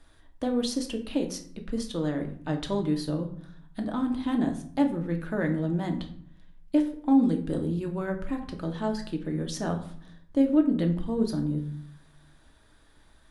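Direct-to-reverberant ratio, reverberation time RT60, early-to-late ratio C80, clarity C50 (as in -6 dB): 3.5 dB, 0.55 s, 14.5 dB, 10.5 dB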